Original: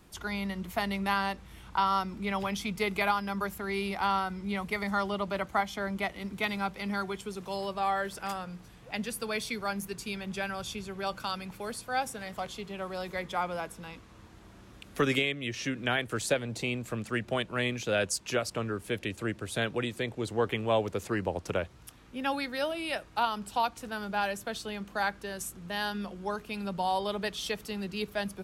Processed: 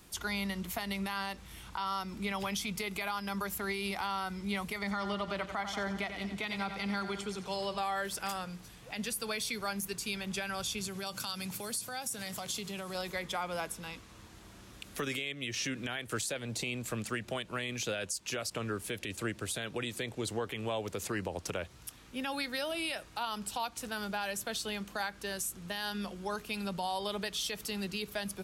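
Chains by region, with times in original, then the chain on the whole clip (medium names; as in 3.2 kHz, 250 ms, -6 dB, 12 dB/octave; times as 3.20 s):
4.78–7.78 s: distance through air 54 m + feedback delay 90 ms, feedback 60%, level -12 dB
10.81–12.95 s: compression 4:1, threshold -38 dBFS + high-pass 99 Hz + tone controls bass +6 dB, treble +8 dB
whole clip: treble shelf 2.7 kHz +9.5 dB; compression, threshold -28 dBFS; peak limiter -23.5 dBFS; trim -1.5 dB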